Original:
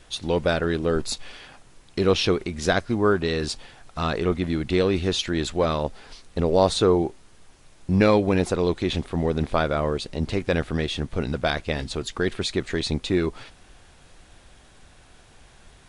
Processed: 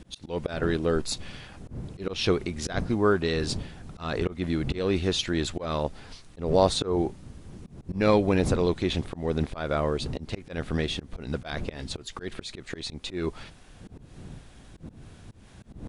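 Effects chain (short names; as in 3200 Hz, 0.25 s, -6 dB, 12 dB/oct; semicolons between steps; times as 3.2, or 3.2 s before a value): wind noise 170 Hz -36 dBFS; auto swell 0.185 s; gain -2 dB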